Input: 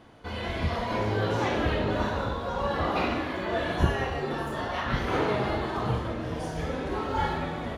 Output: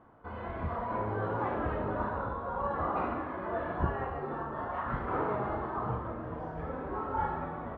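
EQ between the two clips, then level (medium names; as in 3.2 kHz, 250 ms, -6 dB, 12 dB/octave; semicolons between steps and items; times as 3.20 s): resonant low-pass 1.2 kHz, resonance Q 2; -7.5 dB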